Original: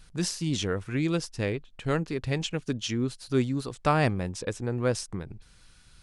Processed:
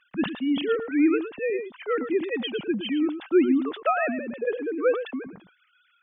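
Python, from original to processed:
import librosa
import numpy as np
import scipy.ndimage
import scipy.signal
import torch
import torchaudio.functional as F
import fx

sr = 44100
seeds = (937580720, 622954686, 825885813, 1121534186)

p1 = fx.sine_speech(x, sr)
p2 = p1 + fx.echo_single(p1, sr, ms=112, db=-10.5, dry=0)
p3 = fx.sustainer(p2, sr, db_per_s=130.0)
y = p3 * 10.0 ** (3.0 / 20.0)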